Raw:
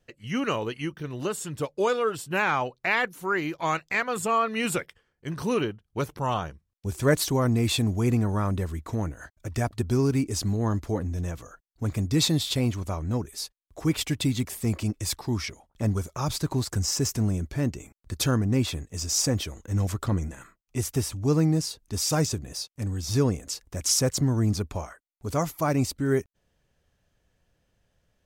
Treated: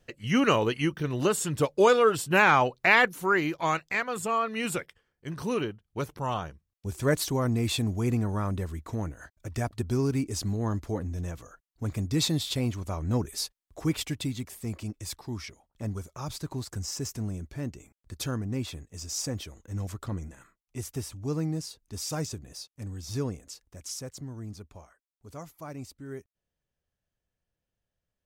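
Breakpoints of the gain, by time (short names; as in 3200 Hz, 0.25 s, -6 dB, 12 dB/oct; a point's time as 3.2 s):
3.02 s +4.5 dB
4.11 s -3.5 dB
12.85 s -3.5 dB
13.31 s +3 dB
14.41 s -8 dB
23.21 s -8 dB
24.09 s -16 dB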